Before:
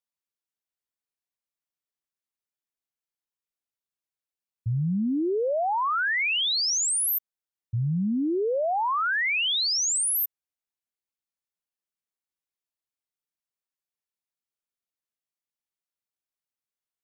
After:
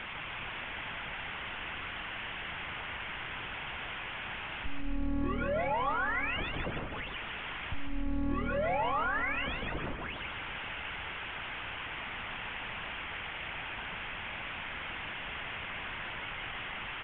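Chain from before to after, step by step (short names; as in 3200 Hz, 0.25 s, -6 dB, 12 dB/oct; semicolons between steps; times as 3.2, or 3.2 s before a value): delta modulation 16 kbps, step -49 dBFS; tilt shelf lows -4.5 dB, about 790 Hz; in parallel at +1 dB: compressor, threshold -48 dBFS, peak gain reduction 17.5 dB; on the sum: limiter -32.5 dBFS, peak gain reduction 8.5 dB; monotone LPC vocoder at 8 kHz 280 Hz; on a send: frequency-shifting echo 0.149 s, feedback 54%, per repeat -39 Hz, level -5 dB; on the sum: gain +6 dB; µ-law 64 kbps 8000 Hz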